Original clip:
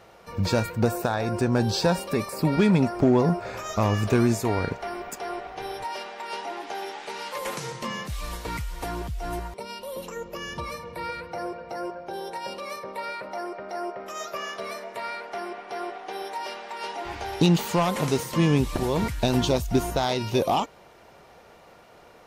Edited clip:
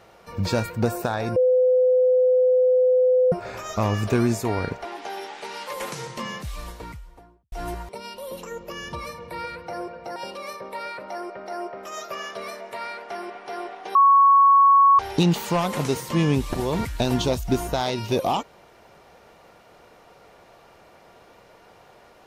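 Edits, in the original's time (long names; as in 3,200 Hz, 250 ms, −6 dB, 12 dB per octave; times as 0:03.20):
0:01.36–0:03.32: beep over 507 Hz −14.5 dBFS
0:04.85–0:06.50: remove
0:07.96–0:09.17: fade out and dull
0:11.81–0:12.39: remove
0:16.18–0:17.22: beep over 1,110 Hz −11 dBFS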